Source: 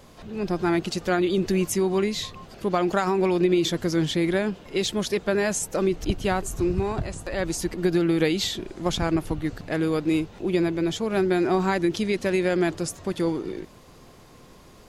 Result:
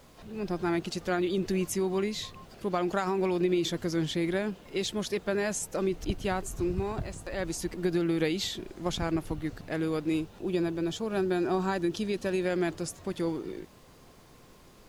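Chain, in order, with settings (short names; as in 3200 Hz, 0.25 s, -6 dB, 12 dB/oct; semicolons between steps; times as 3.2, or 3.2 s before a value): 10.14–12.46 notch 2100 Hz, Q 5.3; added noise pink -57 dBFS; gain -6 dB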